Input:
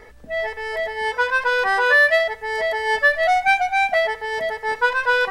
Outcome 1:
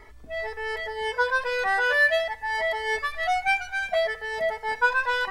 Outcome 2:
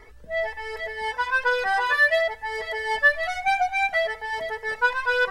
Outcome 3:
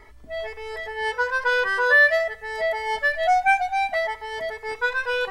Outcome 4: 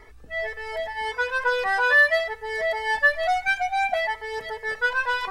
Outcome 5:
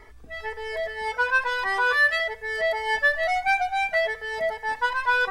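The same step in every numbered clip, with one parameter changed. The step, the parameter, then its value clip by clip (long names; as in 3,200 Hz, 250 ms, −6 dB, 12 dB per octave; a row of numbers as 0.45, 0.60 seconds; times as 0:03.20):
flanger whose copies keep moving one way, speed: 0.37, 1.6, 0.24, 0.96, 0.6 Hertz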